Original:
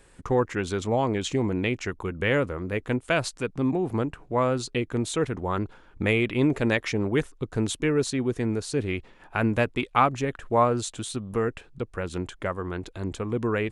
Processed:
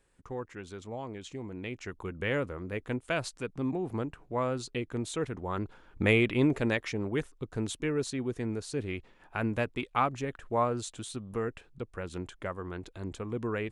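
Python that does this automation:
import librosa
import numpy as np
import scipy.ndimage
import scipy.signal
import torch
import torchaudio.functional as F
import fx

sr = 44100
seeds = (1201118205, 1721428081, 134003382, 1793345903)

y = fx.gain(x, sr, db=fx.line((1.48, -15.0), (2.04, -7.0), (5.46, -7.0), (6.14, -0.5), (6.92, -7.0)))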